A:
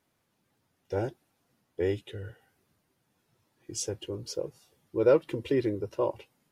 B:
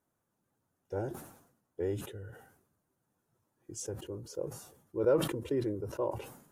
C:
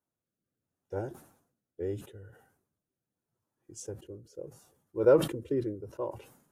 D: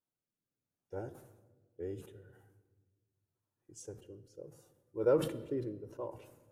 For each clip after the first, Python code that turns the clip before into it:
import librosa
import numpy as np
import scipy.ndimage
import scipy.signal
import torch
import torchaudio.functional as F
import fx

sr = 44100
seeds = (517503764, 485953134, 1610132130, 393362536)

y1 = fx.band_shelf(x, sr, hz=3200.0, db=-10.0, octaves=1.7)
y1 = fx.sustainer(y1, sr, db_per_s=78.0)
y1 = F.gain(torch.from_numpy(y1), -5.5).numpy()
y2 = fx.rotary(y1, sr, hz=0.75)
y2 = fx.upward_expand(y2, sr, threshold_db=-48.0, expansion=1.5)
y2 = F.gain(torch.from_numpy(y2), 6.5).numpy()
y3 = fx.vibrato(y2, sr, rate_hz=0.91, depth_cents=25.0)
y3 = fx.room_shoebox(y3, sr, seeds[0], volume_m3=1100.0, walls='mixed', distance_m=0.39)
y3 = F.gain(torch.from_numpy(y3), -6.5).numpy()